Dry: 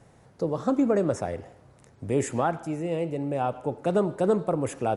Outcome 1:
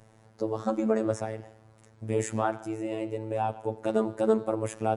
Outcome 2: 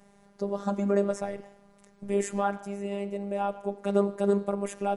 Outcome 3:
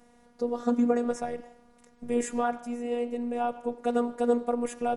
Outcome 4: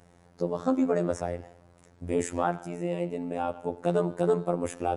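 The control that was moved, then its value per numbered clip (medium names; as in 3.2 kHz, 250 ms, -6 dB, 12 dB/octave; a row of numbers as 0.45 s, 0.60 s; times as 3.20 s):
robot voice, frequency: 110 Hz, 200 Hz, 240 Hz, 87 Hz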